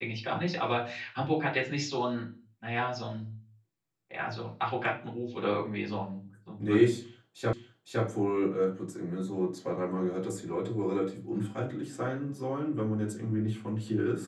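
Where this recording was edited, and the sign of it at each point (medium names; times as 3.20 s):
7.53 s: repeat of the last 0.51 s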